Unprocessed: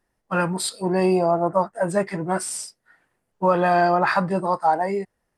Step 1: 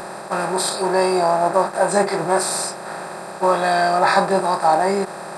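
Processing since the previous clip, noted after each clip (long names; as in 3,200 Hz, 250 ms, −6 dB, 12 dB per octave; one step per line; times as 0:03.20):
compressor on every frequency bin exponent 0.2
noise reduction from a noise print of the clip's start 10 dB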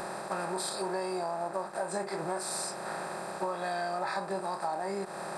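downward compressor 6 to 1, threshold −25 dBFS, peak gain reduction 14 dB
level −6 dB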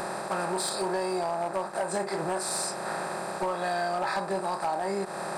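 gain into a clipping stage and back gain 27 dB
level +4.5 dB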